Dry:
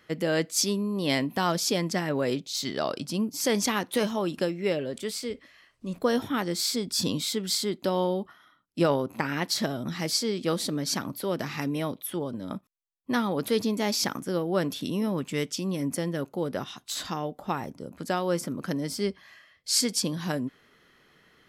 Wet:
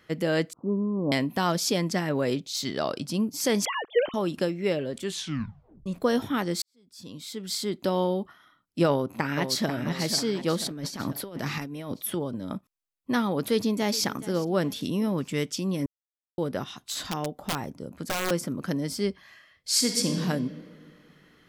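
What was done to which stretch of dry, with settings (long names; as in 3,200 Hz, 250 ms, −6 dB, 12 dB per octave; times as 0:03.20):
0:00.53–0:01.12: Butterworth low-pass 1,200 Hz 72 dB per octave
0:03.65–0:04.14: three sine waves on the formant tracks
0:05.00: tape stop 0.86 s
0:06.62–0:07.77: fade in quadratic
0:08.88–0:09.73: delay throw 490 ms, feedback 45%, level −8 dB
0:10.66–0:12.15: compressor whose output falls as the input rises −33 dBFS, ratio −0.5
0:13.39–0:14.02: delay throw 420 ms, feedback 35%, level −17.5 dB
0:15.86–0:16.38: silence
0:16.95–0:18.31: wrap-around overflow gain 21.5 dB
0:19.70–0:20.19: thrown reverb, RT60 2 s, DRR 2.5 dB
whole clip: low-shelf EQ 170 Hz +4 dB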